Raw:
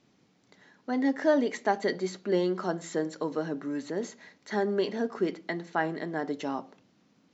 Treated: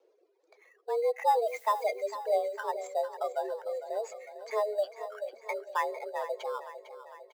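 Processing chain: spectral contrast raised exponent 1.6; 2.87–3.91 resonant high shelf 1700 Hz -9 dB, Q 1.5; 4.84–5.33 HPF 960 Hz 6 dB/oct; reverb removal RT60 1.6 s; in parallel at -10.5 dB: sample-rate reducer 4100 Hz, jitter 0%; on the sum: frequency shift +220 Hz; wow and flutter 29 cents; 1.46–1.87 added noise blue -54 dBFS; on a send: feedback echo 0.453 s, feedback 59%, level -13 dB; on the sum: gain -3 dB

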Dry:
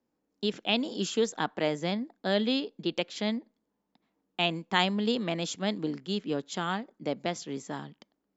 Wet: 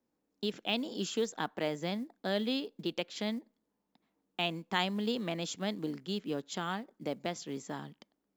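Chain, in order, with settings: in parallel at -2 dB: compressor 16:1, threshold -34 dBFS, peak gain reduction 16.5 dB; on the sum: short-mantissa float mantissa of 4-bit; gain -7 dB

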